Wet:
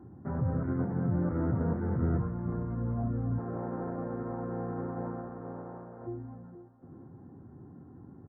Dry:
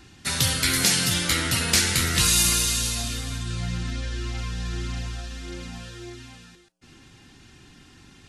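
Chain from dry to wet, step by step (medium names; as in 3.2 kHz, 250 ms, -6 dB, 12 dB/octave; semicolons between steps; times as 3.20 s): 3.37–6.06 s: spectral peaks clipped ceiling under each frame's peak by 30 dB; high-pass 86 Hz 24 dB/octave; peak limiter -17.5 dBFS, peak gain reduction 11 dB; Gaussian low-pass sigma 10 samples; feedback delay 457 ms, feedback 54%, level -18 dB; trim +4 dB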